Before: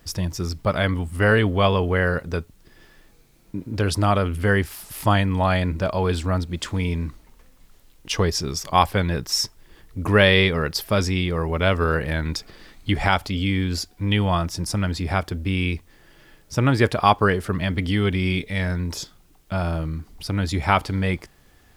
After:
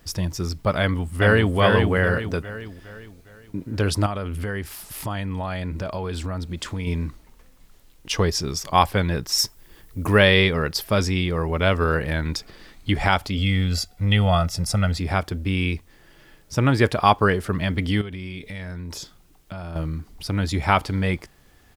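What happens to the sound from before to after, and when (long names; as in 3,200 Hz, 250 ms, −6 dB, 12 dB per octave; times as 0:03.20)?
0:00.80–0:01.56: delay throw 410 ms, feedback 45%, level −3.5 dB
0:04.06–0:06.87: downward compressor 5 to 1, threshold −25 dBFS
0:09.38–0:10.19: high-shelf EQ 9,500 Hz +11.5 dB
0:13.38–0:14.99: comb filter 1.5 ms
0:18.01–0:19.76: downward compressor 10 to 1, threshold −30 dBFS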